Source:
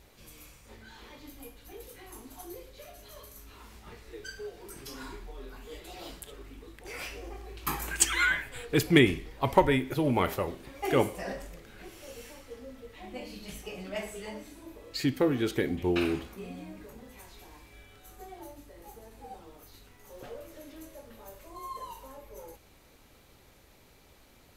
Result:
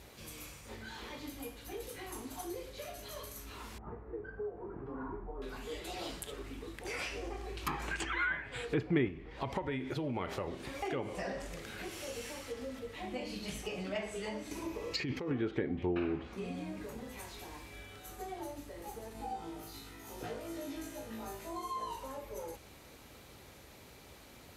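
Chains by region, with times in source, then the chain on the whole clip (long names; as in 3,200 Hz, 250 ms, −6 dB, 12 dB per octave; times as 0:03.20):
0:03.78–0:05.42: low-pass filter 1,200 Hz 24 dB per octave + notch filter 570 Hz, Q 18
0:09.08–0:12.79: downward compressor 2.5 to 1, threshold −34 dBFS + one half of a high-frequency compander encoder only
0:14.51–0:15.31: EQ curve with evenly spaced ripples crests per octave 0.79, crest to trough 6 dB + compressor whose output falls as the input rises −33 dBFS
0:19.13–0:21.96: notch comb filter 560 Hz + flutter between parallel walls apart 3.1 metres, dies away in 0.36 s
whole clip: treble cut that deepens with the level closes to 1,800 Hz, closed at −26 dBFS; high-pass filter 55 Hz; downward compressor 2 to 1, threshold −43 dBFS; level +4.5 dB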